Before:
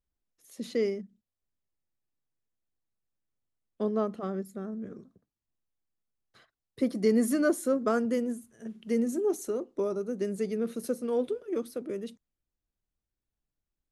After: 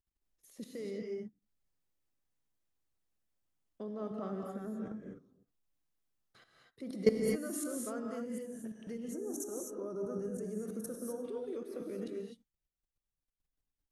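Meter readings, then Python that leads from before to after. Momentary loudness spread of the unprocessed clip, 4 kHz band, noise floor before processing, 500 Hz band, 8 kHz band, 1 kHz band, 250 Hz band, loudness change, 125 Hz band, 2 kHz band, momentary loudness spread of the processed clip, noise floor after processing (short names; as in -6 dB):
14 LU, -6.5 dB, under -85 dBFS, -8.0 dB, -2.0 dB, -10.5 dB, -9.0 dB, -8.5 dB, n/a, -10.5 dB, 13 LU, under -85 dBFS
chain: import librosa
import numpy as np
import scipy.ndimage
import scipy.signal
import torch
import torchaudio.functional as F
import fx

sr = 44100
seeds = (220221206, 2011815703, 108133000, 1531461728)

y = fx.level_steps(x, sr, step_db=21)
y = fx.rev_gated(y, sr, seeds[0], gate_ms=280, shape='rising', drr_db=0.5)
y = fx.spec_box(y, sr, start_s=9.13, length_s=2.12, low_hz=1800.0, high_hz=5400.0, gain_db=-13)
y = y * librosa.db_to_amplitude(1.0)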